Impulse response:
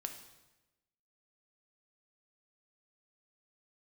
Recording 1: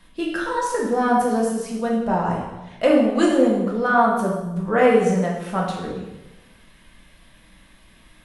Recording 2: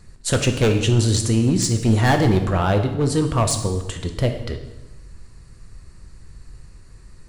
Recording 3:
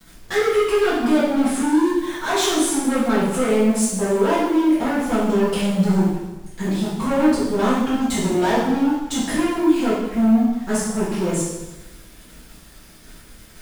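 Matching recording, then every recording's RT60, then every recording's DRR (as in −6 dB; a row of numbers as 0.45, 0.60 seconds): 2; 1.0, 1.0, 1.0 seconds; −3.5, 5.0, −12.0 decibels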